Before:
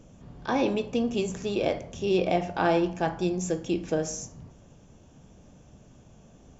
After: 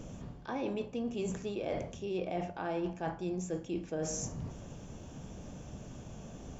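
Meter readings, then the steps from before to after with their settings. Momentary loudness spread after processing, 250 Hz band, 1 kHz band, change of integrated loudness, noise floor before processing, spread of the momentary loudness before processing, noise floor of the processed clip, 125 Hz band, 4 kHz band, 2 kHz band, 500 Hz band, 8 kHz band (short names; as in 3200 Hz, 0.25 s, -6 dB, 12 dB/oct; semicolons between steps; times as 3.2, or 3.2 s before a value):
12 LU, -8.5 dB, -11.0 dB, -11.0 dB, -55 dBFS, 6 LU, -49 dBFS, -5.5 dB, -11.5 dB, -11.5 dB, -9.5 dB, n/a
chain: dynamic EQ 5000 Hz, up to -5 dB, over -49 dBFS, Q 0.87; reverse; compressor 6:1, threshold -41 dBFS, peak gain reduction 20.5 dB; reverse; gain +6.5 dB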